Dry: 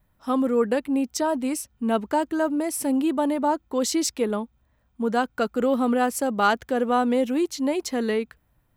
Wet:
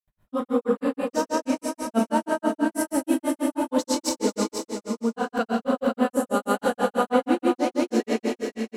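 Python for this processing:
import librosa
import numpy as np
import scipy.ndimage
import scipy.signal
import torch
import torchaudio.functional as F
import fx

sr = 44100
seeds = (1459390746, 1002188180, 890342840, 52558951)

p1 = fx.rev_schroeder(x, sr, rt60_s=2.7, comb_ms=31, drr_db=-1.5)
p2 = fx.spec_box(p1, sr, start_s=6.08, length_s=0.46, low_hz=660.0, high_hz=6400.0, gain_db=-7)
p3 = fx.granulator(p2, sr, seeds[0], grain_ms=130.0, per_s=6.2, spray_ms=100.0, spread_st=0)
y = p3 + fx.echo_single(p3, sr, ms=489, db=-7.5, dry=0)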